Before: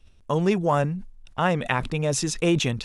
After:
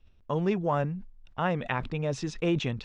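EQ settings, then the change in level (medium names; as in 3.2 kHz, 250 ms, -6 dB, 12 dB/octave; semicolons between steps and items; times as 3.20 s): distance through air 160 m; -5.0 dB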